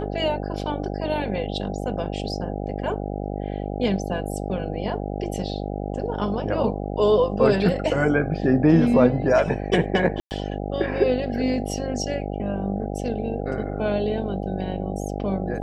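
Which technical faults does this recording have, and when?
buzz 50 Hz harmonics 16 -29 dBFS
10.2–10.31 gap 0.109 s

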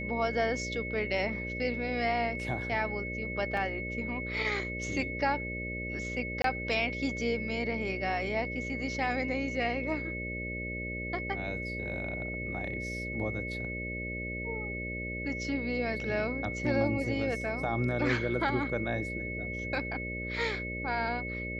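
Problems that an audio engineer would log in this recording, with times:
buzz 60 Hz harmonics 10 -39 dBFS
tone 2200 Hz -37 dBFS
3.57 gap 2.6 ms
6.42–6.44 gap 23 ms

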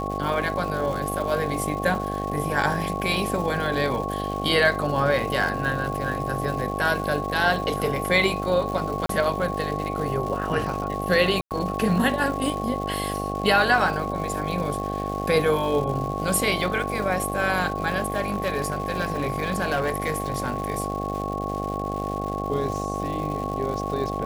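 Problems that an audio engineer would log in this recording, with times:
buzz 50 Hz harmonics 16 -30 dBFS
crackle 330/s -32 dBFS
tone 1100 Hz -30 dBFS
9.06–9.09 gap 33 ms
11.41–11.51 gap 98 ms
18.08–20.7 clipped -19 dBFS

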